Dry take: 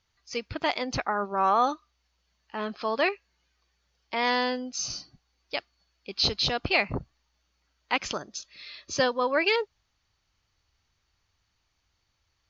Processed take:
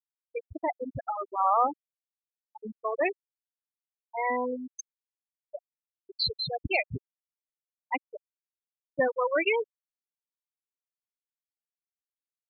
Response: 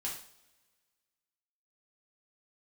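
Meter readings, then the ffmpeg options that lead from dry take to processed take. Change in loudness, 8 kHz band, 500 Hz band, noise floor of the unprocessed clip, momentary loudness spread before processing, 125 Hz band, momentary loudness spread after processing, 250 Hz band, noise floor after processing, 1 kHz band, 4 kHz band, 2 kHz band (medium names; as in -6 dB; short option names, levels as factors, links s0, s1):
-2.0 dB, no reading, -1.5 dB, -75 dBFS, 15 LU, -4.0 dB, 20 LU, -4.5 dB, under -85 dBFS, -1.5 dB, -6.5 dB, -4.0 dB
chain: -af "afftfilt=real='re*gte(hypot(re,im),0.224)':imag='im*gte(hypot(re,im),0.224)':win_size=1024:overlap=0.75"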